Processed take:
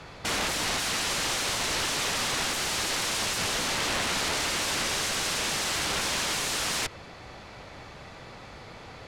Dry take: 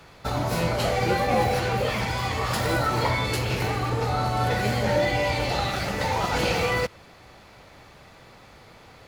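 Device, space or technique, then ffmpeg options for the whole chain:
overflowing digital effects unit: -af "aeval=exprs='(mod(22.4*val(0)+1,2)-1)/22.4':c=same,lowpass=8300,volume=1.68"

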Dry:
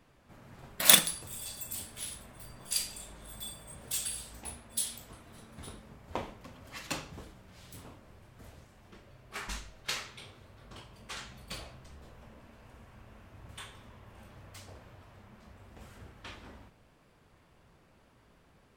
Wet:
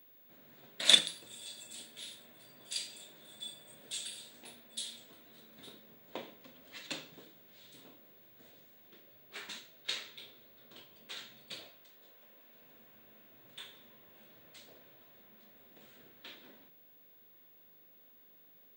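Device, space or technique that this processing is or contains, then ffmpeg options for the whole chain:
old television with a line whistle: -filter_complex "[0:a]highpass=f=170:w=0.5412,highpass=f=170:w=1.3066,equalizer=f=190:t=q:w=4:g=-7,equalizer=f=840:t=q:w=4:g=-7,equalizer=f=1200:t=q:w=4:g=-8,equalizer=f=3700:t=q:w=4:g=9,equalizer=f=5500:t=q:w=4:g=-6,lowpass=f=8300:w=0.5412,lowpass=f=8300:w=1.3066,aeval=exprs='val(0)+0.002*sin(2*PI*15625*n/s)':c=same,asettb=1/sr,asplit=3[s0][s1][s2];[s0]atrim=end=11.694[s3];[s1]atrim=start=11.69:end=12.55,asetpts=PTS-STARTPTS,afade=t=in:d=0.004:c=qsin,afade=t=out:st=0.856:d=0.004:c=qsin,highpass=f=510:p=1[s4];[s2]atrim=start=12.546[s5];[s3][s4]acrossfade=d=0.004:c1=hsin:c2=qsin[s6];[s6][s5]acrossfade=d=0.004:c1=qsin:c2=hsin,volume=0.596"

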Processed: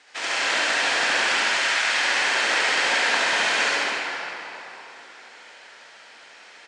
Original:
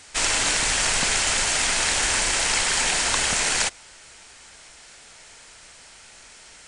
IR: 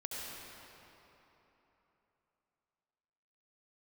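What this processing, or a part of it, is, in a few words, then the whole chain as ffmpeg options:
station announcement: -filter_complex "[0:a]asettb=1/sr,asplit=3[s0][s1][s2];[s0]atrim=end=1.324[s3];[s1]atrim=start=1.32:end=1.93,asetpts=PTS-STARTPTS,afade=t=in:d=0.004:c=qsin,afade=t=out:st=0.606:d=0.004:c=qsin,highpass=930[s4];[s2]atrim=start=1.926[s5];[s3][s4]acrossfade=d=0.004:c1=hsin:c2=qsin[s6];[s6][s5]acrossfade=d=0.004:c1=qsin:c2=hsin,highpass=350,lowpass=3900,equalizer=f=1700:t=o:w=0.23:g=4,aecho=1:1:69.97|215.7:0.794|0.282[s7];[1:a]atrim=start_sample=2205[s8];[s7][s8]afir=irnorm=-1:irlink=0"

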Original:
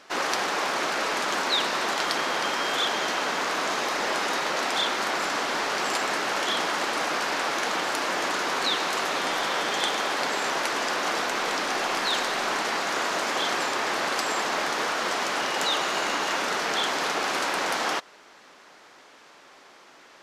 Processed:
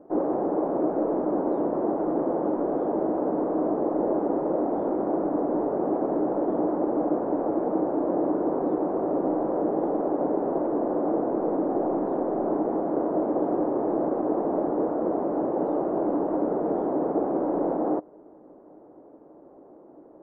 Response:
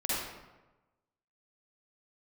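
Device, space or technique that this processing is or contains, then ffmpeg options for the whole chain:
under water: -af "lowpass=f=630:w=0.5412,lowpass=f=630:w=1.3066,equalizer=f=310:t=o:w=0.25:g=9,volume=2.37"

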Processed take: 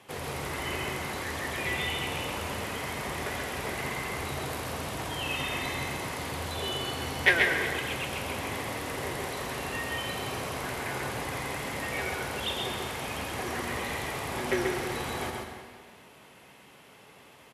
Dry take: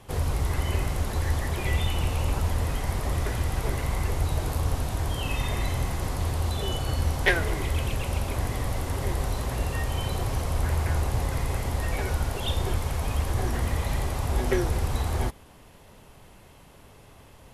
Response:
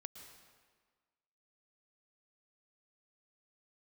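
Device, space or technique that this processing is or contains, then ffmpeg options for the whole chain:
PA in a hall: -filter_complex "[0:a]highpass=190,equalizer=f=2300:t=o:w=1.4:g=6.5,aecho=1:1:134:0.631[s0];[1:a]atrim=start_sample=2205[s1];[s0][s1]afir=irnorm=-1:irlink=0,volume=1.26"

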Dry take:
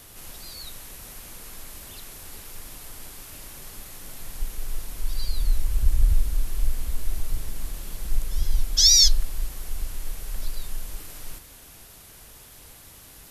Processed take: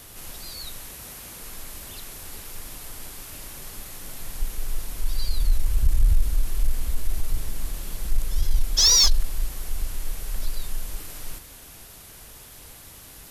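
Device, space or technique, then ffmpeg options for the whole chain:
saturation between pre-emphasis and de-emphasis: -filter_complex "[0:a]highshelf=f=7300:g=11.5,asoftclip=type=tanh:threshold=0.299,highshelf=f=7300:g=-11.5,asettb=1/sr,asplit=3[s0][s1][s2];[s0]atrim=end=0.894[s3];[s1]atrim=start=0.89:end=1.41,asetpts=PTS-STARTPTS,afade=t=in:d=0.004:c=qsin,afade=t=out:st=0.516:d=0.004:c=qsin,highpass=50[s4];[s2]atrim=start=1.406[s5];[s3][s4]acrossfade=d=0.004:c1=hsin:c2=qsin[s6];[s6][s5]acrossfade=d=0.004:c1=qsin:c2=hsin,volume=1.33"

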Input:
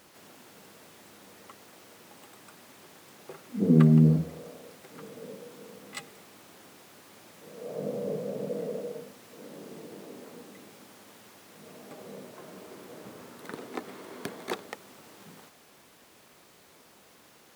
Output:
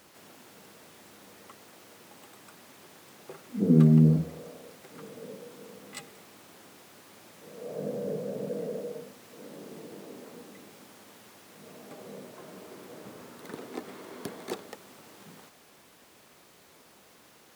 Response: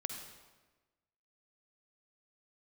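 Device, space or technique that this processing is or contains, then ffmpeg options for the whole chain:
one-band saturation: -filter_complex "[0:a]acrossover=split=600|3800[s0][s1][s2];[s1]asoftclip=type=tanh:threshold=0.0106[s3];[s0][s3][s2]amix=inputs=3:normalize=0"

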